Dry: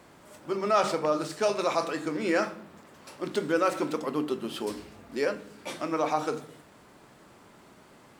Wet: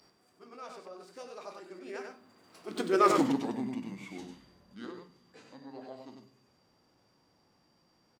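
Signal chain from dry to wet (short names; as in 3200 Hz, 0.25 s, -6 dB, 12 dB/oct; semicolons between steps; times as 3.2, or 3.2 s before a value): Doppler pass-by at 3.13, 59 m/s, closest 9.1 m; whine 5600 Hz -64 dBFS; on a send: echo 96 ms -5.5 dB; on the sum: formant shift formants -3 st; gain +3.5 dB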